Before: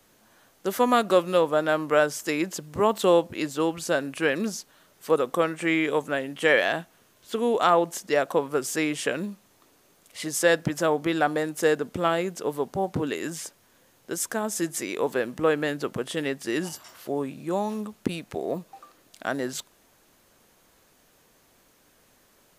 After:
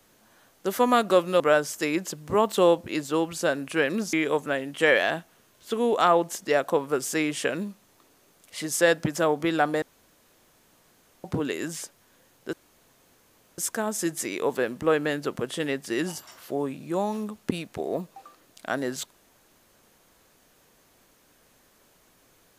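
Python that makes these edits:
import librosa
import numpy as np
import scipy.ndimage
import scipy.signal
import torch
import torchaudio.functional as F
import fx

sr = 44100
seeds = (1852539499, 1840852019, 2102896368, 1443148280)

y = fx.edit(x, sr, fx.cut(start_s=1.4, length_s=0.46),
    fx.cut(start_s=4.59, length_s=1.16),
    fx.room_tone_fill(start_s=11.44, length_s=1.42),
    fx.insert_room_tone(at_s=14.15, length_s=1.05), tone=tone)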